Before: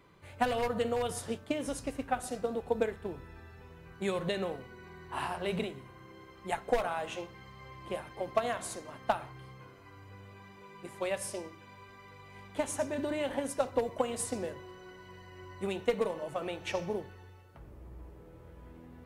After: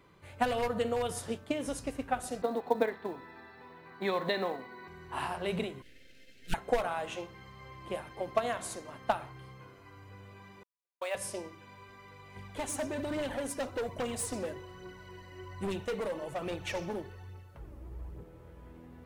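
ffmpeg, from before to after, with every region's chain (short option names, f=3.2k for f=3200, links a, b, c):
-filter_complex "[0:a]asettb=1/sr,asplit=3[a][b][c];[a]atrim=end=2.424[d];[b]atrim=start=2.42:end=4.88,asetpts=PTS-STARTPTS,afade=t=in:d=0.004:c=qsin,afade=t=out:st=2.456:d=0.004:c=qsin,highpass=210,equalizer=f=260:t=q:w=4:g=6,equalizer=f=720:t=q:w=4:g=5,equalizer=f=1k:t=q:w=4:g=8,equalizer=f=1.9k:t=q:w=4:g=7,equalizer=f=2.9k:t=q:w=4:g=-5,equalizer=f=4.1k:t=q:w=4:g=9,lowpass=f=4.6k:w=0.5412,lowpass=f=4.6k:w=1.3066,acrusher=bits=8:mode=log:mix=0:aa=0.000001[e];[c]atrim=start=4.876[f];[d][e]acrossfade=d=0.004:c1=hsin:c2=qsin[g];[g][f]acrossfade=d=0.004:c1=qsin:c2=hsin,asettb=1/sr,asplit=3[h][i][j];[h]atrim=end=5.824[k];[i]atrim=start=5.82:end=6.54,asetpts=PTS-STARTPTS,afade=t=in:d=0.004:c=qsin,afade=t=out:st=0.716:d=0.004:c=qsin,lowshelf=f=440:t=q:w=3:g=-14,aeval=exprs='abs(val(0))':c=same,asuperstop=centerf=1000:order=4:qfactor=0.7[l];[j]atrim=start=6.536[m];[k][l]acrossfade=d=0.004:c1=hsin:c2=qsin[n];[n][m]acrossfade=d=0.004:c1=qsin:c2=hsin,asettb=1/sr,asplit=3[o][p][q];[o]atrim=end=10.634[r];[p]atrim=start=10.63:end=11.15,asetpts=PTS-STARTPTS,afade=t=in:d=0.004:c=qsin,afade=t=out:st=0.516:d=0.004:c=qsin,highpass=f=540:w=0.5412,highpass=f=540:w=1.3066,agate=range=-53dB:threshold=-44dB:ratio=16:release=100:detection=peak,acrusher=bits=7:mode=log:mix=0:aa=0.000001[s];[q]atrim=start=11.146[t];[r][s]acrossfade=d=0.004:c1=hsin:c2=qsin[u];[u][t]acrossfade=d=0.004:c1=qsin:c2=hsin,asettb=1/sr,asplit=3[v][w][x];[v]atrim=end=12.364[y];[w]atrim=start=12.36:end=18.24,asetpts=PTS-STARTPTS,afade=t=in:d=0.004:c=qsin,afade=t=out:st=5.876:d=0.004:c=qsin,bass=f=250:g=3,treble=f=4k:g=1,aphaser=in_gain=1:out_gain=1:delay=3.8:decay=0.43:speed=1.2:type=triangular,asoftclip=type=hard:threshold=-30.5dB[z];[x]atrim=start=18.236[aa];[y][z]acrossfade=d=0.004:c1=hsin:c2=qsin[ab];[ab][aa]acrossfade=d=0.004:c1=qsin:c2=hsin"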